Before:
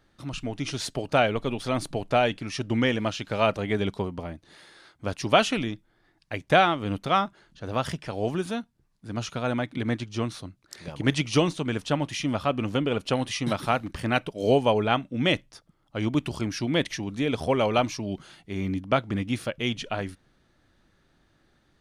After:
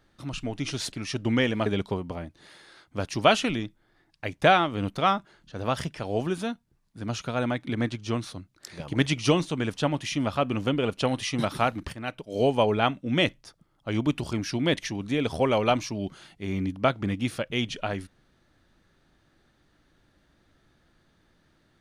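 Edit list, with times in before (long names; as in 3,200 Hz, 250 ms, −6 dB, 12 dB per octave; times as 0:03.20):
0:00.92–0:02.37: remove
0:03.11–0:03.74: remove
0:14.01–0:14.74: fade in, from −14 dB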